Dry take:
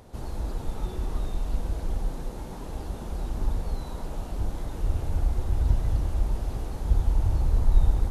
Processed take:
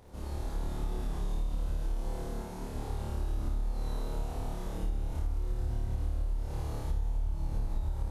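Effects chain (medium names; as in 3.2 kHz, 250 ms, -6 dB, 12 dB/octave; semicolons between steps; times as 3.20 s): on a send: flutter echo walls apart 4.7 m, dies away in 1.3 s; on the sum: compression 10:1, threshold -20 dBFS, peak gain reduction 12 dB; trim -7.5 dB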